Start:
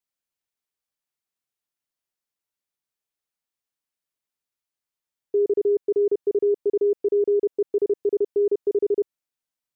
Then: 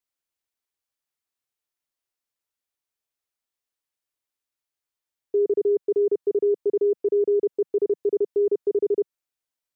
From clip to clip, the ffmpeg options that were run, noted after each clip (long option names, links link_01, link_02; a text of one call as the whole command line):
ffmpeg -i in.wav -af "equalizer=frequency=180:width=4:gain=-13.5" out.wav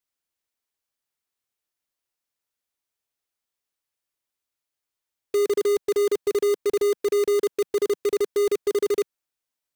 ffmpeg -i in.wav -af "acrusher=bits=2:mode=log:mix=0:aa=0.000001" out.wav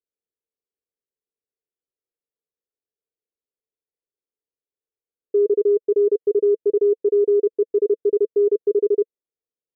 ffmpeg -i in.wav -af "lowpass=frequency=450:width_type=q:width=5.2,volume=-8dB" out.wav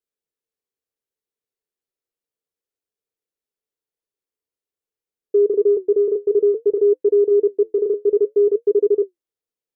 ffmpeg -i in.wav -af "flanger=delay=4.8:depth=6.3:regen=-66:speed=0.57:shape=sinusoidal,volume=6dB" out.wav